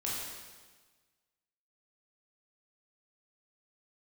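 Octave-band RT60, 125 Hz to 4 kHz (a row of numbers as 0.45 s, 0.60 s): 1.5 s, 1.5 s, 1.4 s, 1.4 s, 1.3 s, 1.3 s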